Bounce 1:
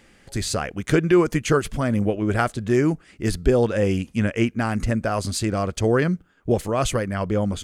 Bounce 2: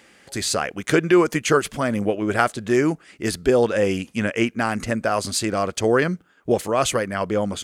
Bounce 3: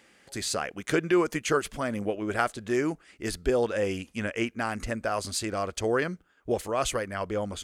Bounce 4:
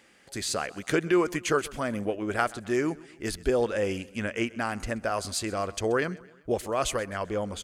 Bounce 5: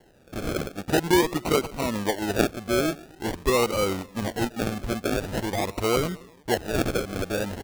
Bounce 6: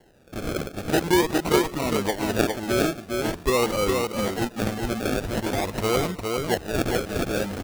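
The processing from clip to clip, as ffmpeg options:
ffmpeg -i in.wav -af "highpass=frequency=360:poles=1,volume=4dB" out.wav
ffmpeg -i in.wav -af "asubboost=boost=7:cutoff=54,volume=-7dB" out.wav
ffmpeg -i in.wav -af "aecho=1:1:130|260|390:0.0891|0.0428|0.0205" out.wav
ffmpeg -i in.wav -af "acrusher=samples=36:mix=1:aa=0.000001:lfo=1:lforange=21.6:lforate=0.46,volume=3dB" out.wav
ffmpeg -i in.wav -af "aecho=1:1:409:0.631" out.wav

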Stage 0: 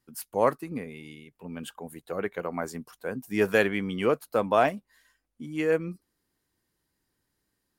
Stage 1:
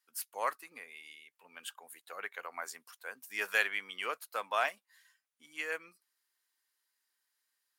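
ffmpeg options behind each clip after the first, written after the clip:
ffmpeg -i in.wav -af "highpass=1300,volume=-1dB" out.wav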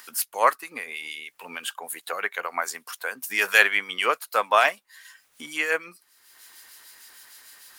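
ffmpeg -i in.wav -filter_complex "[0:a]asplit=2[link_01][link_02];[link_02]acompressor=mode=upward:threshold=-37dB:ratio=2.5,volume=3dB[link_03];[link_01][link_03]amix=inputs=2:normalize=0,acrossover=split=2200[link_04][link_05];[link_04]aeval=exprs='val(0)*(1-0.5/2+0.5/2*cos(2*PI*6.6*n/s))':channel_layout=same[link_06];[link_05]aeval=exprs='val(0)*(1-0.5/2-0.5/2*cos(2*PI*6.6*n/s))':channel_layout=same[link_07];[link_06][link_07]amix=inputs=2:normalize=0,volume=7.5dB" out.wav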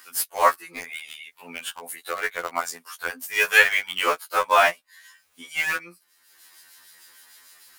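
ffmpeg -i in.wav -filter_complex "[0:a]asplit=2[link_01][link_02];[link_02]acrusher=bits=3:mix=0:aa=0.000001,volume=-6dB[link_03];[link_01][link_03]amix=inputs=2:normalize=0,afftfilt=real='re*2*eq(mod(b,4),0)':imag='im*2*eq(mod(b,4),0)':win_size=2048:overlap=0.75" out.wav

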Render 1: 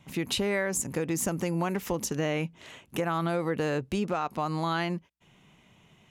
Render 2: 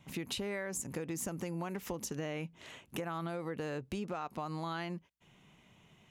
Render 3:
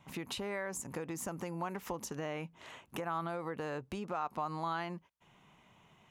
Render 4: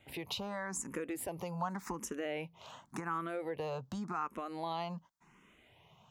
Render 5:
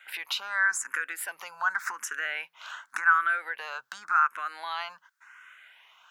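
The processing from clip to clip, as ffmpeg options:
ffmpeg -i in.wav -af "acompressor=threshold=-34dB:ratio=2.5,volume=-3.5dB" out.wav
ffmpeg -i in.wav -af "equalizer=frequency=1000:width_type=o:width=1.4:gain=8.5,volume=-3dB" out.wav
ffmpeg -i in.wav -filter_complex "[0:a]asplit=2[link_01][link_02];[link_02]afreqshift=0.89[link_03];[link_01][link_03]amix=inputs=2:normalize=1,volume=3dB" out.wav
ffmpeg -i in.wav -af "highpass=frequency=1500:width_type=q:width=7.7,volume=7dB" out.wav

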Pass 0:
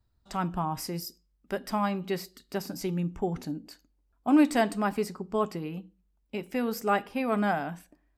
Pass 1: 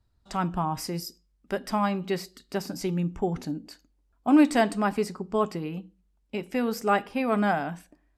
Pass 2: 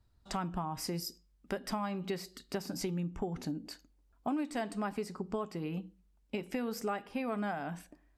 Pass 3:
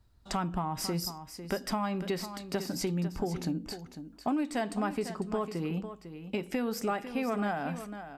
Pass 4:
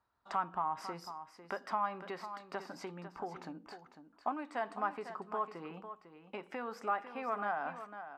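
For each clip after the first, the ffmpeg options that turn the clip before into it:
ffmpeg -i in.wav -af "lowpass=11000,volume=2.5dB" out.wav
ffmpeg -i in.wav -af "acompressor=threshold=-33dB:ratio=6" out.wav
ffmpeg -i in.wav -filter_complex "[0:a]asplit=2[link_01][link_02];[link_02]asoftclip=type=tanh:threshold=-33.5dB,volume=-11dB[link_03];[link_01][link_03]amix=inputs=2:normalize=0,aecho=1:1:500:0.282,volume=2.5dB" out.wav
ffmpeg -i in.wav -af "bandpass=frequency=1100:width_type=q:width=1.8:csg=0,volume=2.5dB" out.wav

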